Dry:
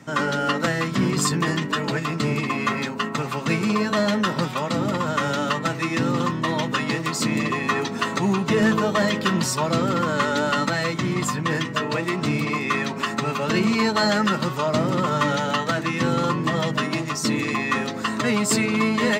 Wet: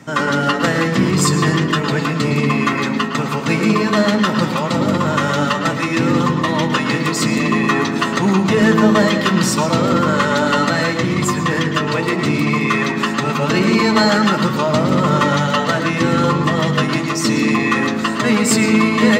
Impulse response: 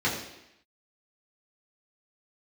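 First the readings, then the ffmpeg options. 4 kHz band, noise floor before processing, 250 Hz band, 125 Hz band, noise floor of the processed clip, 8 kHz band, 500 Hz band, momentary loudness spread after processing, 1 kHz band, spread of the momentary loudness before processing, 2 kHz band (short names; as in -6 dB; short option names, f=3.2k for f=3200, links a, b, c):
+5.5 dB, -30 dBFS, +7.5 dB, +7.5 dB, -21 dBFS, +5.5 dB, +6.5 dB, 5 LU, +6.0 dB, 4 LU, +6.0 dB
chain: -filter_complex "[0:a]asplit=2[a][b];[1:a]atrim=start_sample=2205,adelay=107[c];[b][c]afir=irnorm=-1:irlink=0,volume=-17.5dB[d];[a][d]amix=inputs=2:normalize=0,volume=5dB"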